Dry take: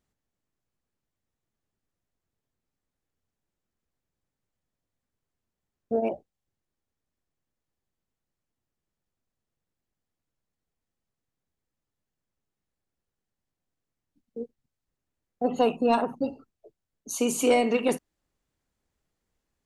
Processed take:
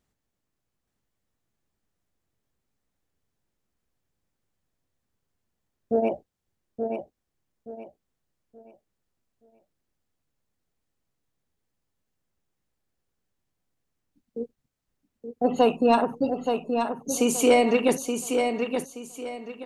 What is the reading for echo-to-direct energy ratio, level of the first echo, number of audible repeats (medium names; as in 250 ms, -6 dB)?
-5.5 dB, -6.0 dB, 3